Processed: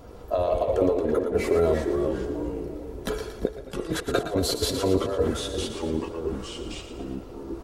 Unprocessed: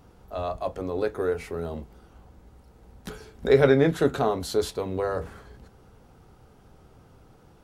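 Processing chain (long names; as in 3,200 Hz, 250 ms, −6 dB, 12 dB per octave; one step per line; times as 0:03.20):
spectral magnitudes quantised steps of 15 dB
parametric band 500 Hz +14.5 dB 0.41 octaves
comb filter 3 ms, depth 43%
compressor whose output falls as the input rises −26 dBFS, ratio −0.5
delay with pitch and tempo change per echo 81 ms, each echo −3 semitones, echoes 2, each echo −6 dB
echo with a time of its own for lows and highs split 630 Hz, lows 345 ms, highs 115 ms, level −9 dB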